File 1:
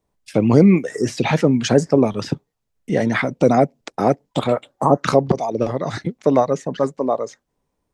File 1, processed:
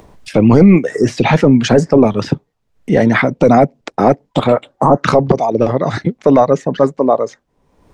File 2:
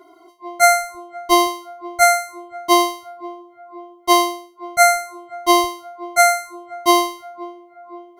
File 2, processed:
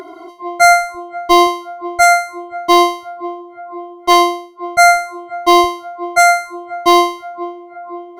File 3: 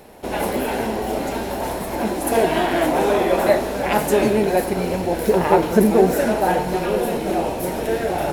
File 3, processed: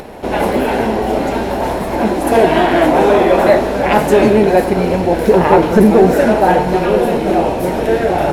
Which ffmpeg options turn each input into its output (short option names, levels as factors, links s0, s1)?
-af "lowpass=f=3100:p=1,apsyclip=2.99,acompressor=mode=upward:threshold=0.0631:ratio=2.5,volume=0.841"